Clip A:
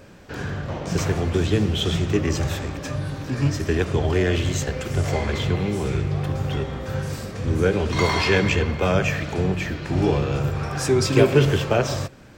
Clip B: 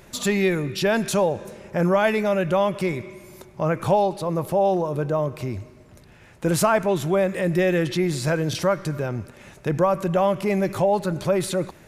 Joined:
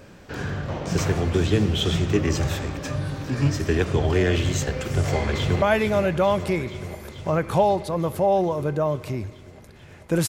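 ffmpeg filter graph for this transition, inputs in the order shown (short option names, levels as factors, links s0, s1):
-filter_complex "[0:a]apad=whole_dur=10.28,atrim=end=10.28,atrim=end=5.622[s0];[1:a]atrim=start=1.948:end=6.61[s1];[s0][s1]acrossfade=d=0.004:c1=hsin:c2=hsin,asplit=2[s2][s3];[s3]afade=t=in:st=4.98:d=0.01,afade=t=out:st=5.62:d=0.01,aecho=0:1:440|880|1320|1760|2200|2640|3080|3520|3960|4400|4840|5280:0.316228|0.252982|0.202386|0.161909|0.129527|0.103622|0.0828972|0.0663178|0.0530542|0.0424434|0.0339547|0.0271638[s4];[s2][s4]amix=inputs=2:normalize=0"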